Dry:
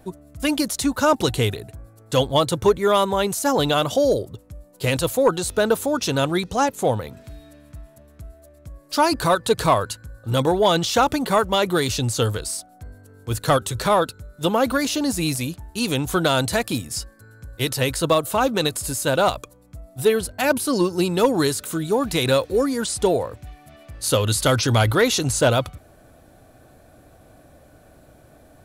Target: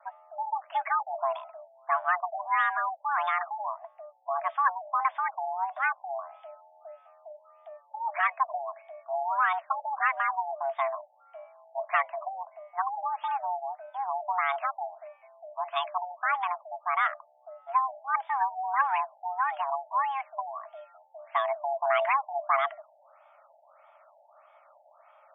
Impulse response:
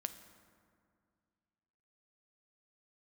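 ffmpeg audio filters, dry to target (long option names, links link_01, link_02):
-af "afreqshift=480,asetrate=49833,aresample=44100,afftfilt=real='re*lt(b*sr/1024,860*pow(3700/860,0.5+0.5*sin(2*PI*1.6*pts/sr)))':imag='im*lt(b*sr/1024,860*pow(3700/860,0.5+0.5*sin(2*PI*1.6*pts/sr)))':win_size=1024:overlap=0.75,volume=-7.5dB"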